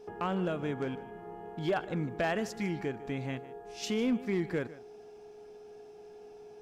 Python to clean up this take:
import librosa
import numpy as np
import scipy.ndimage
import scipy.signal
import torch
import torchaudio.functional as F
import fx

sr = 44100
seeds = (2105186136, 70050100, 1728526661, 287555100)

y = fx.fix_declip(x, sr, threshold_db=-23.5)
y = fx.notch(y, sr, hz=420.0, q=30.0)
y = fx.fix_echo_inverse(y, sr, delay_ms=152, level_db=-17.5)